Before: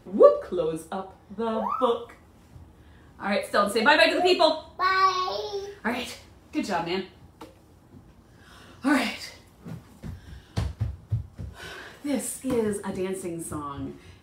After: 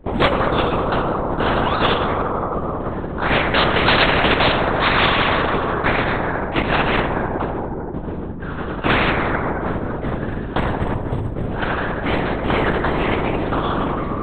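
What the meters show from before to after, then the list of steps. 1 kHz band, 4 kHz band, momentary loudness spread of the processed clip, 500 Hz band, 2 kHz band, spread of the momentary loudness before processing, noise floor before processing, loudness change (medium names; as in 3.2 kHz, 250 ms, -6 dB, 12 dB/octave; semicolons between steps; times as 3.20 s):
+8.5 dB, +8.5 dB, 10 LU, +4.5 dB, +9.5 dB, 22 LU, -55 dBFS, +6.0 dB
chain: median filter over 15 samples; bass shelf 420 Hz +11 dB; gate with hold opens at -35 dBFS; plate-style reverb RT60 2.4 s, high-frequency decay 0.4×, DRR 5.5 dB; LPC vocoder at 8 kHz whisper; spectrum-flattening compressor 4:1; trim -4.5 dB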